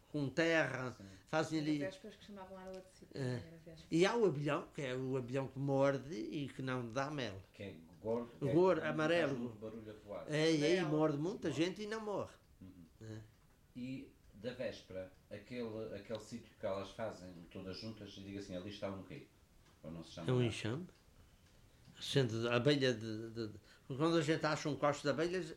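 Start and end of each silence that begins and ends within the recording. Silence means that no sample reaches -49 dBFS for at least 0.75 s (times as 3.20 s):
20.89–21.90 s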